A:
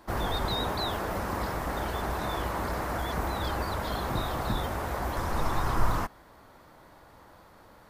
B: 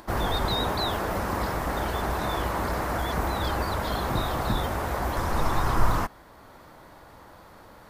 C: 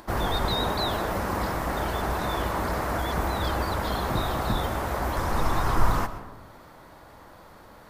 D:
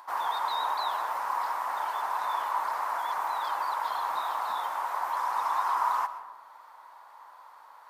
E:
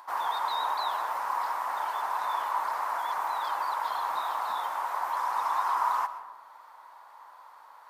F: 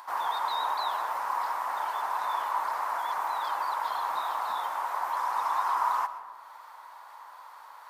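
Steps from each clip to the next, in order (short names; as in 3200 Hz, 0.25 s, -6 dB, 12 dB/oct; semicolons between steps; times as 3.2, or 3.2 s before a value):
upward compressor, threshold -48 dBFS; gain +3.5 dB
reverb RT60 1.1 s, pre-delay 85 ms, DRR 12 dB
resonant high-pass 960 Hz, resonance Q 4.9; gain -8.5 dB
nothing audible
mismatched tape noise reduction encoder only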